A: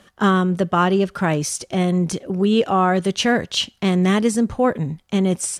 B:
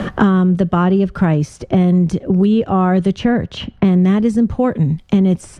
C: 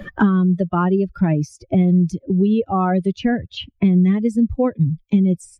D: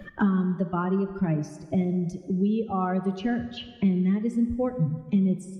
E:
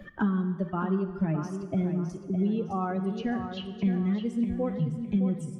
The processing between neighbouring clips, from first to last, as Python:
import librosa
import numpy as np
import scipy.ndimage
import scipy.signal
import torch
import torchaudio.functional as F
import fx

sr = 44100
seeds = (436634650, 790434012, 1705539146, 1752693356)

y1 = fx.riaa(x, sr, side='playback')
y1 = fx.band_squash(y1, sr, depth_pct=100)
y1 = y1 * 10.0 ** (-2.5 / 20.0)
y2 = fx.bin_expand(y1, sr, power=2.0)
y3 = fx.rev_plate(y2, sr, seeds[0], rt60_s=1.7, hf_ratio=0.85, predelay_ms=0, drr_db=9.0)
y3 = y3 * 10.0 ** (-8.5 / 20.0)
y4 = fx.echo_feedback(y3, sr, ms=611, feedback_pct=34, wet_db=-8.5)
y4 = y4 * 10.0 ** (-3.5 / 20.0)